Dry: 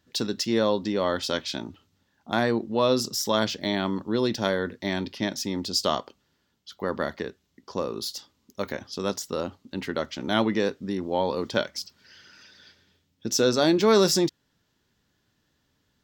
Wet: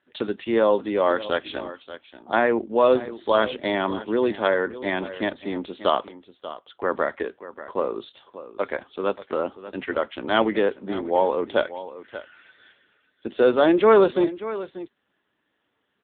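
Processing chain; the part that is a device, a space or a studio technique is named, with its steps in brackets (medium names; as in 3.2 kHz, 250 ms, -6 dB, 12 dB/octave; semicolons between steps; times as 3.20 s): satellite phone (band-pass 350–3200 Hz; delay 586 ms -14.5 dB; trim +6.5 dB; AMR-NB 6.7 kbps 8 kHz)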